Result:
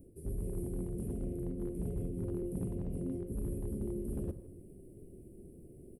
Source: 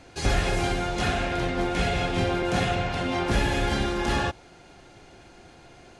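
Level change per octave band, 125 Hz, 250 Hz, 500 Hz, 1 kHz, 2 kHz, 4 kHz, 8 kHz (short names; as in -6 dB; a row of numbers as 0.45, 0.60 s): -10.0 dB, -9.5 dB, -13.5 dB, -35.0 dB, under -40 dB, under -40 dB, -17.0 dB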